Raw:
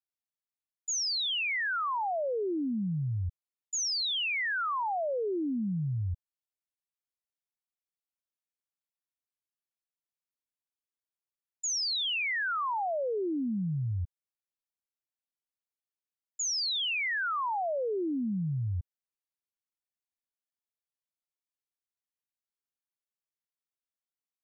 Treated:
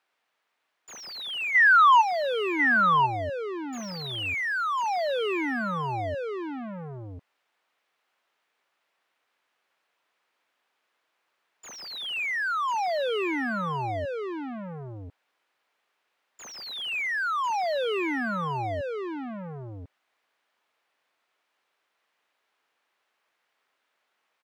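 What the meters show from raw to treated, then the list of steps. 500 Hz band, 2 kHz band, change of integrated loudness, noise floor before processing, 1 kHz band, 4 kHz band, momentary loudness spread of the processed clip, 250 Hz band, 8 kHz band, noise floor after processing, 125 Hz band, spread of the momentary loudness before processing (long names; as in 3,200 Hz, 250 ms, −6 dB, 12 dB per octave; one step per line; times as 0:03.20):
+5.0 dB, +8.5 dB, +5.0 dB, below −85 dBFS, +10.0 dB, −2.5 dB, 19 LU, +1.0 dB, can't be measured, −78 dBFS, −3.0 dB, 8 LU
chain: dynamic equaliser 2,500 Hz, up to +5 dB, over −48 dBFS, Q 6.6
mid-hump overdrive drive 35 dB, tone 2,600 Hz, clips at −22 dBFS
bass and treble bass −8 dB, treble −13 dB
gain on a spectral selection 0:01.55–0:02.01, 640–4,000 Hz +11 dB
single-tap delay 1,046 ms −4.5 dB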